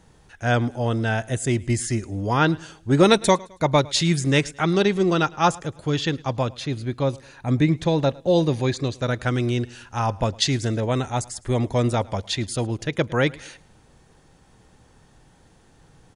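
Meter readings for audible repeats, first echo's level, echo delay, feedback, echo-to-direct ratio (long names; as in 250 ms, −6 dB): 2, −23.5 dB, 107 ms, 43%, −22.5 dB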